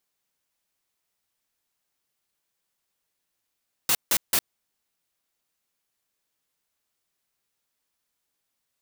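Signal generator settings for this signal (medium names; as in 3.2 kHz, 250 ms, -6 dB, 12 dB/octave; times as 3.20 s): noise bursts white, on 0.06 s, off 0.16 s, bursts 3, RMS -21 dBFS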